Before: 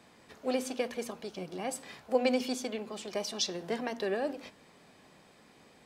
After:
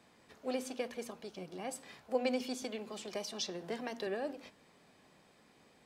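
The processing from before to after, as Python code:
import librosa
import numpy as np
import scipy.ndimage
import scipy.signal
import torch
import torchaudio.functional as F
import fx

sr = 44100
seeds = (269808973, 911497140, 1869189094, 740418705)

y = fx.band_squash(x, sr, depth_pct=40, at=(2.62, 4.07))
y = F.gain(torch.from_numpy(y), -5.5).numpy()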